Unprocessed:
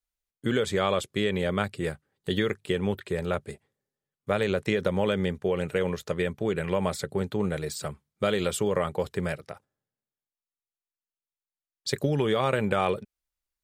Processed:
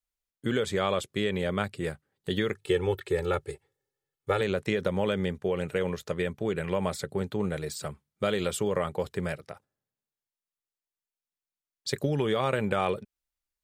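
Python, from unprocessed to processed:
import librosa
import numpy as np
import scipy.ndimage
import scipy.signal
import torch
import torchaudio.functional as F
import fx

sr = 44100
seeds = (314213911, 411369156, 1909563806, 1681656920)

y = fx.comb(x, sr, ms=2.3, depth=0.93, at=(2.55, 4.41))
y = y * 10.0 ** (-2.0 / 20.0)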